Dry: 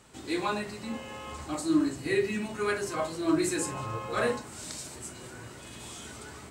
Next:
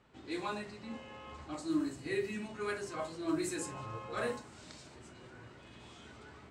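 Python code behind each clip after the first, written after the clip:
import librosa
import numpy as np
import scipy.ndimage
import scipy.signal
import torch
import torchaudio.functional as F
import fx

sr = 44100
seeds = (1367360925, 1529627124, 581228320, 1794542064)

y = fx.quant_dither(x, sr, seeds[0], bits=12, dither='triangular')
y = fx.env_lowpass(y, sr, base_hz=2900.0, full_db=-23.5)
y = y * 10.0 ** (-8.0 / 20.0)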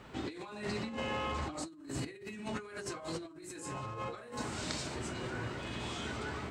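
y = fx.over_compress(x, sr, threshold_db=-49.0, ratio=-1.0)
y = y * 10.0 ** (7.0 / 20.0)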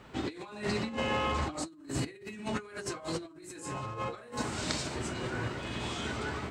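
y = fx.upward_expand(x, sr, threshold_db=-47.0, expansion=1.5)
y = y * 10.0 ** (6.0 / 20.0)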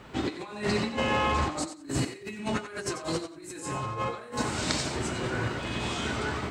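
y = fx.echo_thinned(x, sr, ms=91, feedback_pct=19, hz=420.0, wet_db=-10.0)
y = y * 10.0 ** (4.5 / 20.0)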